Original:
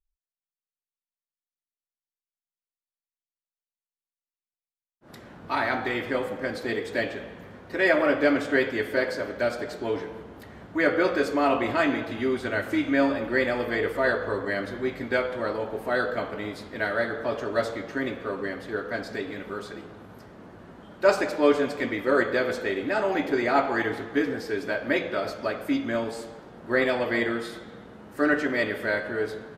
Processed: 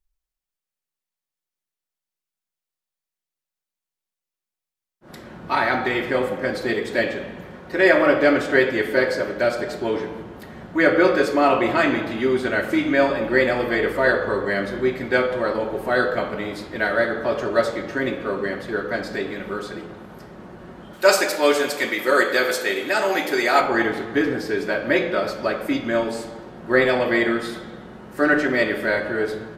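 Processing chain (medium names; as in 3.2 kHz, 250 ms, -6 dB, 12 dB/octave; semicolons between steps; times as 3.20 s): 20.93–23.61 s: RIAA curve recording; reverberation RT60 0.65 s, pre-delay 5 ms, DRR 8 dB; trim +5 dB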